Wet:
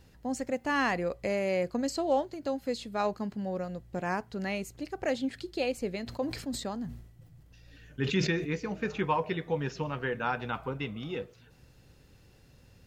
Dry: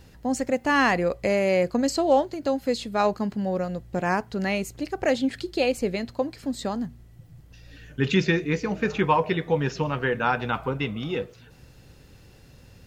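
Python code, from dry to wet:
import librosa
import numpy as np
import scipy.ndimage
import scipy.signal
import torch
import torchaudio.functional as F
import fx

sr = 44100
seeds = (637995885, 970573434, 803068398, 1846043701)

y = fx.sustainer(x, sr, db_per_s=75.0, at=(6.06, 8.52), fade=0.02)
y = F.gain(torch.from_numpy(y), -7.5).numpy()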